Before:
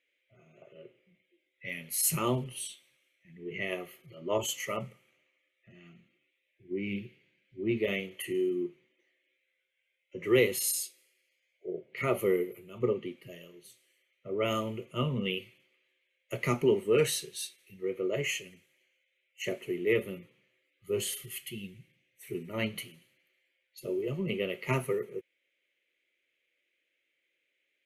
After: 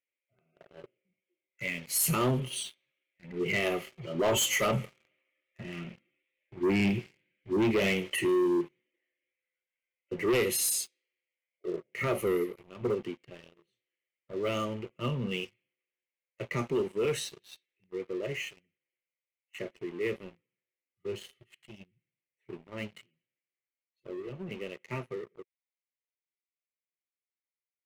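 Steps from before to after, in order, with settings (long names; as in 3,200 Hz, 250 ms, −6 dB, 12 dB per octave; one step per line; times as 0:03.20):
source passing by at 0:05.87, 6 m/s, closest 8.9 metres
in parallel at +0.5 dB: brickwall limiter −31.5 dBFS, peak gain reduction 11 dB
on the sum: low-pass that shuts in the quiet parts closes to 2,600 Hz, open at −31 dBFS
leveller curve on the samples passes 3
level −2.5 dB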